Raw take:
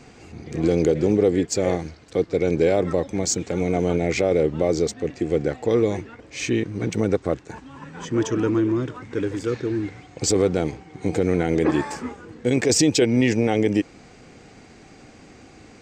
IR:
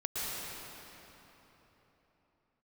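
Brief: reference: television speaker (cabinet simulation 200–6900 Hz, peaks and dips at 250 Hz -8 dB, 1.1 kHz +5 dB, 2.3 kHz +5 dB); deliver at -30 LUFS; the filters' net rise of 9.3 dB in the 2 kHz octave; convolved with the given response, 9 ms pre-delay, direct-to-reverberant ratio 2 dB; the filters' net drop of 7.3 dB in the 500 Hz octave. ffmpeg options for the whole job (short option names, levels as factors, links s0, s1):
-filter_complex "[0:a]equalizer=f=500:t=o:g=-9,equalizer=f=2000:t=o:g=7.5,asplit=2[s0][s1];[1:a]atrim=start_sample=2205,adelay=9[s2];[s1][s2]afir=irnorm=-1:irlink=0,volume=0.398[s3];[s0][s3]amix=inputs=2:normalize=0,highpass=f=200:w=0.5412,highpass=f=200:w=1.3066,equalizer=f=250:t=q:w=4:g=-8,equalizer=f=1100:t=q:w=4:g=5,equalizer=f=2300:t=q:w=4:g=5,lowpass=f=6900:w=0.5412,lowpass=f=6900:w=1.3066,volume=0.473"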